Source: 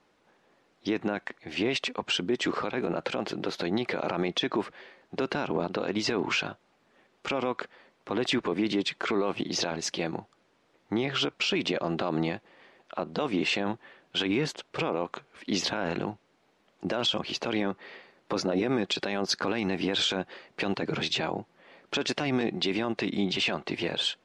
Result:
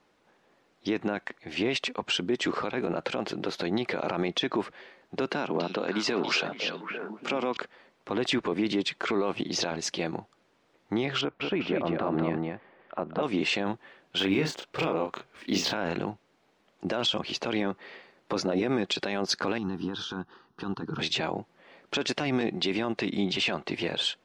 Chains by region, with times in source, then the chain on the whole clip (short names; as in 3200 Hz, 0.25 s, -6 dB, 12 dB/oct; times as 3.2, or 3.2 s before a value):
5.29–7.57 HPF 150 Hz 24 dB/oct + delay with a stepping band-pass 0.284 s, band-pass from 3900 Hz, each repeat -1.4 oct, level 0 dB
11.21–13.23 LPF 1900 Hz + echo 0.199 s -3.5 dB
14.18–15.75 median filter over 3 samples + doubler 31 ms -5 dB
19.58–20.99 band shelf 2900 Hz -10 dB + fixed phaser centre 2200 Hz, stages 6
whole clip: dry